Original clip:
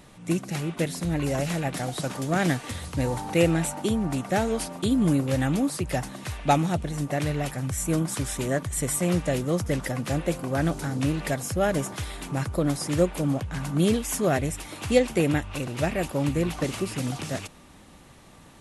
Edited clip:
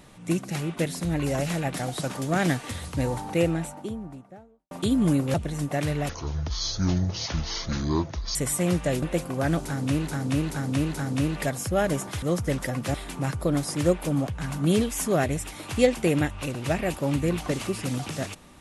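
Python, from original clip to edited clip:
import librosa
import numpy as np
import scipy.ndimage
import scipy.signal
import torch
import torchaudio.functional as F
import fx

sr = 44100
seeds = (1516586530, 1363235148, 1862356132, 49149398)

y = fx.studio_fade_out(x, sr, start_s=2.85, length_s=1.86)
y = fx.edit(y, sr, fx.cut(start_s=5.34, length_s=1.39),
    fx.speed_span(start_s=7.48, length_s=1.29, speed=0.57),
    fx.move(start_s=9.44, length_s=0.72, to_s=12.07),
    fx.repeat(start_s=10.78, length_s=0.43, count=4), tone=tone)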